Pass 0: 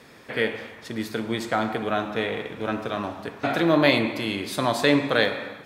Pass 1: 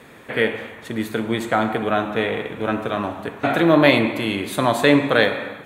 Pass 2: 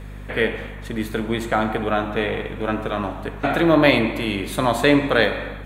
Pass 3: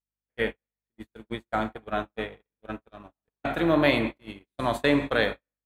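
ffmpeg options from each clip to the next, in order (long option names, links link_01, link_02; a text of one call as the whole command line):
ffmpeg -i in.wav -af "equalizer=frequency=5100:width=2.7:gain=-13.5,volume=5dB" out.wav
ffmpeg -i in.wav -af "aeval=exprs='val(0)+0.0224*(sin(2*PI*50*n/s)+sin(2*PI*2*50*n/s)/2+sin(2*PI*3*50*n/s)/3+sin(2*PI*4*50*n/s)/4+sin(2*PI*5*50*n/s)/5)':channel_layout=same,volume=-1dB" out.wav
ffmpeg -i in.wav -af "agate=range=-56dB:threshold=-20dB:ratio=16:detection=peak,volume=-6.5dB" out.wav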